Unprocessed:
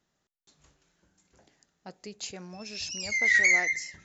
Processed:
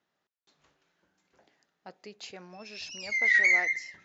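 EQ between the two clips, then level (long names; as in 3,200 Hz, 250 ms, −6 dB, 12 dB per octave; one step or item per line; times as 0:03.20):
high-pass filter 470 Hz 6 dB per octave
high-frequency loss of the air 170 metres
+1.5 dB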